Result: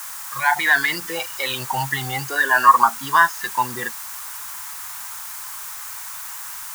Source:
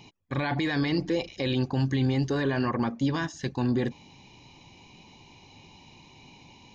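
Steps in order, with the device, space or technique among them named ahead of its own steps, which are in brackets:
noise reduction from a noise print of the clip's start 20 dB
dictaphone (band-pass filter 280–3,500 Hz; automatic gain control; tape wow and flutter 28 cents; white noise bed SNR 17 dB)
drawn EQ curve 130 Hz 0 dB, 260 Hz −18 dB, 470 Hz −12 dB, 980 Hz +14 dB, 1,500 Hz +12 dB, 2,800 Hz +2 dB, 4,400 Hz +3 dB, 6,800 Hz +9 dB
level −2 dB

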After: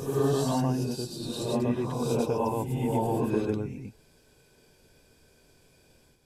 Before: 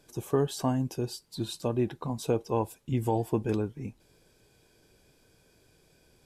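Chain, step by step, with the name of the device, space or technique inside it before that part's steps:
reverse reverb (reversed playback; convolution reverb RT60 0.90 s, pre-delay 90 ms, DRR −5 dB; reversed playback)
level −3.5 dB

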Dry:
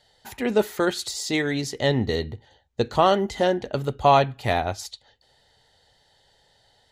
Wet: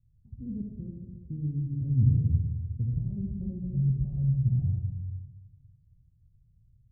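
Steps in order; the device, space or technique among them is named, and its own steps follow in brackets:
0:03.44–0:04.66: comb filter 5.4 ms, depth 77%
parametric band 1,400 Hz +8 dB 0.82 octaves
club heard from the street (brickwall limiter −14 dBFS, peak gain reduction 12.5 dB; low-pass filter 140 Hz 24 dB per octave; convolution reverb RT60 1.2 s, pre-delay 47 ms, DRR 0.5 dB)
level +7 dB

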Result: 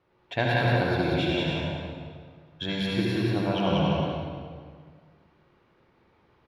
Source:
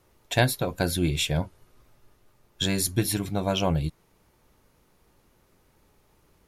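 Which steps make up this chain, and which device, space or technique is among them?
stadium PA (high-pass filter 150 Hz 6 dB per octave; parametric band 3,500 Hz +3 dB 2.2 octaves; loudspeakers that aren't time-aligned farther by 64 metres −2 dB, 98 metres −12 dB; convolution reverb RT60 1.9 s, pre-delay 61 ms, DRR −3.5 dB)
high-frequency loss of the air 320 metres
level −3.5 dB

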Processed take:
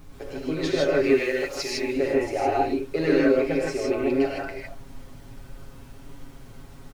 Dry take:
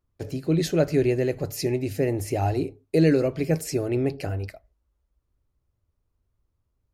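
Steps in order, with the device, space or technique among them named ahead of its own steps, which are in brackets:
aircraft cabin announcement (band-pass filter 440–3,100 Hz; soft clipping −16 dBFS, distortion −21 dB; brown noise bed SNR 13 dB)
high-shelf EQ 5,500 Hz +5.5 dB
comb filter 7.3 ms
0:01.04–0:01.78: tilt shelving filter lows −6.5 dB, about 1,200 Hz
reverb whose tail is shaped and stops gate 180 ms rising, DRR −3.5 dB

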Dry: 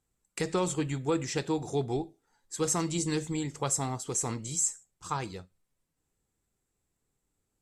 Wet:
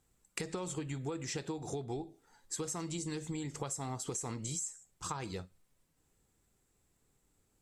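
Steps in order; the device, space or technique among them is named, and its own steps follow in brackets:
serial compression, peaks first (downward compressor, threshold −36 dBFS, peak gain reduction 12 dB; downward compressor 2 to 1, threshold −46 dBFS, peak gain reduction 7 dB)
level +6 dB

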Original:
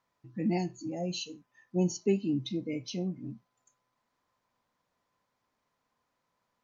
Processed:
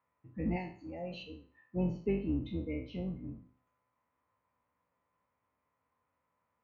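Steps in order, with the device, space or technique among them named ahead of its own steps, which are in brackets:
peak hold with a decay on every bin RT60 0.44 s
sub-octave bass pedal (sub-octave generator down 2 octaves, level −3 dB; loudspeaker in its box 70–2,300 Hz, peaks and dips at 140 Hz −5 dB, 210 Hz −5 dB, 360 Hz −7 dB, 720 Hz −5 dB, 1,600 Hz −6 dB)
0:00.56–0:01.23: spectral tilt +2.5 dB per octave
level −1 dB

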